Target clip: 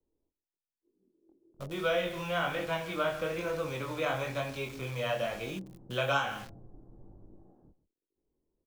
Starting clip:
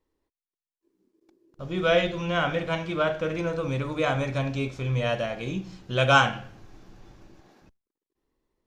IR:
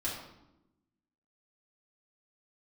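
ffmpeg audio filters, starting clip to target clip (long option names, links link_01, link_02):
-filter_complex "[0:a]aecho=1:1:140:0.141,flanger=delay=19.5:depth=5.3:speed=1.1,acrossover=split=190|800[link_01][link_02][link_03];[link_03]acrusher=bits=7:mix=0:aa=0.000001[link_04];[link_01][link_02][link_04]amix=inputs=3:normalize=0,acrossover=split=390|2000|6500[link_05][link_06][link_07][link_08];[link_05]acompressor=threshold=-41dB:ratio=4[link_09];[link_06]acompressor=threshold=-28dB:ratio=4[link_10];[link_07]acompressor=threshold=-39dB:ratio=4[link_11];[link_08]acompressor=threshold=-56dB:ratio=4[link_12];[link_09][link_10][link_11][link_12]amix=inputs=4:normalize=0"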